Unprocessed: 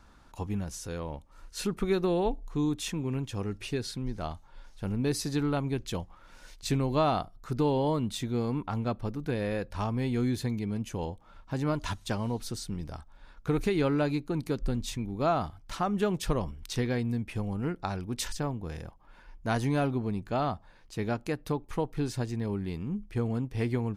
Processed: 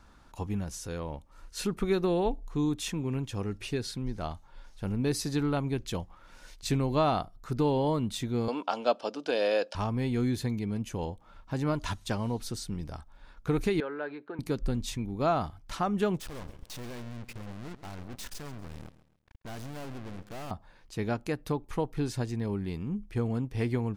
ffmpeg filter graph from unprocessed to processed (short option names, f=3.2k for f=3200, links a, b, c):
-filter_complex "[0:a]asettb=1/sr,asplit=3[a][b][c];[a]atrim=end=8.484[d];[b]atrim=start=8.48:end=9.75,asetpts=PTS-STARTPTS,afade=t=in:d=0.004:c=qsin,afade=t=out:st=1.266:d=0.004:c=qsin,acontrast=57,highpass=f=330:w=0.5412,highpass=f=330:w=1.3066,equalizer=f=370:t=q:w=4:g=-8,equalizer=f=610:t=q:w=4:g=6,equalizer=f=1.1k:t=q:w=4:g=-3,equalizer=f=2k:t=q:w=4:g=-8,equalizer=f=3k:t=q:w=4:g=8,equalizer=f=5.1k:t=q:w=4:g=9,lowpass=f=8.5k:w=0.5412,lowpass=f=8.5k:w=1.3066[e];[c]atrim=start=9.746[f];[d][e]acrossfade=d=0.004:c1=hsin:c2=qsin[g];[g][f]acrossfade=d=0.004:c1=qsin:c2=hsin,asettb=1/sr,asplit=3[h][i][j];[h]atrim=end=13.804[k];[i]atrim=start=13.8:end=14.39,asetpts=PTS-STARTPTS,afade=t=in:d=0.004:c=qsin,afade=t=out:st=0.586:d=0.004:c=qsin,acompressor=threshold=-31dB:ratio=4:attack=3.2:release=140:knee=1:detection=peak,highpass=430,equalizer=f=430:t=q:w=4:g=6,equalizer=f=1.6k:t=q:w=4:g=10,equalizer=f=2.5k:t=q:w=4:g=-6,lowpass=f=3.1k:w=0.5412,lowpass=f=3.1k:w=1.3066[l];[j]atrim=start=14.386[m];[k][l]acrossfade=d=0.004:c1=hsin:c2=qsin[n];[n][m]acrossfade=d=0.004:c1=qsin:c2=hsin,asettb=1/sr,asplit=3[o][p][q];[o]atrim=end=16.204[r];[p]atrim=start=16.2:end=20.51,asetpts=PTS-STARTPTS,afade=t=in:d=0.004:c=qsin,afade=t=out:st=4.306:d=0.004:c=qsin,aeval=exprs='(tanh(70.8*val(0)+0.6)-tanh(0.6))/70.8':c=same,acrusher=bits=6:mix=0:aa=0.5,aecho=1:1:135|270|405:0.168|0.0604|0.0218,atrim=end_sample=190071[s];[q]atrim=start=20.506[t];[r][s]acrossfade=d=0.004:c1=hsin:c2=qsin[u];[u][t]acrossfade=d=0.004:c1=qsin:c2=hsin"